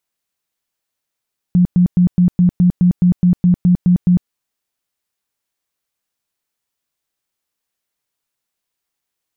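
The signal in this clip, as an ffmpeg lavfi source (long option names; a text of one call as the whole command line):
ffmpeg -f lavfi -i "aevalsrc='0.422*sin(2*PI*178*mod(t,0.21))*lt(mod(t,0.21),18/178)':duration=2.73:sample_rate=44100" out.wav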